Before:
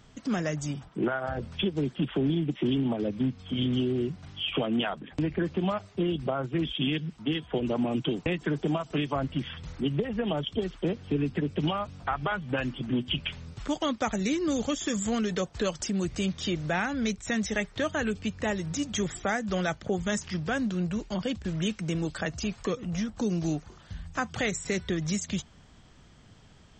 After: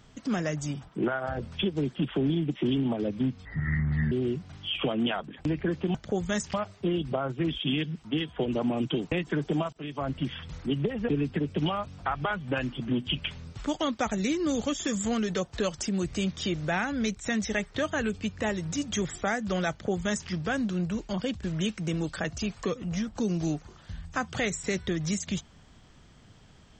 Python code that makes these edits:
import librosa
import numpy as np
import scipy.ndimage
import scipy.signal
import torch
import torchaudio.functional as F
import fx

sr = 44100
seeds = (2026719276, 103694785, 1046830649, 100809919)

y = fx.edit(x, sr, fx.speed_span(start_s=3.45, length_s=0.4, speed=0.6),
    fx.fade_in_from(start_s=8.87, length_s=0.42, floor_db=-21.5),
    fx.cut(start_s=10.23, length_s=0.87),
    fx.duplicate(start_s=19.72, length_s=0.59, to_s=5.68), tone=tone)